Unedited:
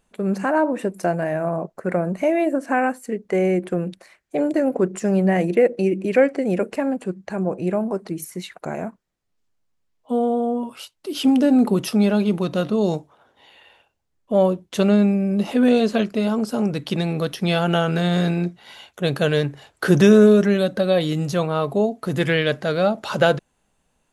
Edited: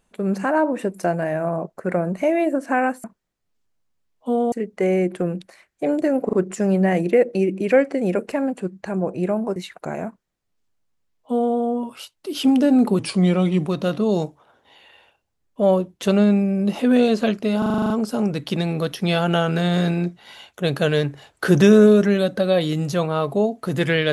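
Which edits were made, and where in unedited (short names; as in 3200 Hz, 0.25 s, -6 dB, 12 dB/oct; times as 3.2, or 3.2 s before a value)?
4.77 stutter 0.04 s, 3 plays
8–8.36 cut
8.87–10.35 copy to 3.04
11.79–12.39 speed 88%
16.3 stutter 0.04 s, 9 plays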